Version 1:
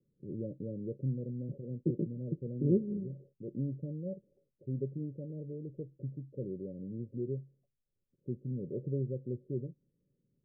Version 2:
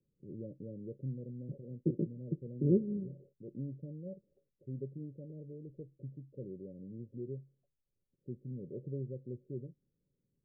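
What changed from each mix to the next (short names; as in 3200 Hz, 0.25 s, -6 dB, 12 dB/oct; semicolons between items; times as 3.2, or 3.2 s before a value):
first voice -5.5 dB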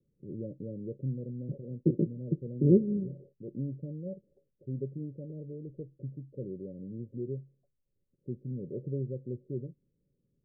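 first voice +5.5 dB; second voice +6.0 dB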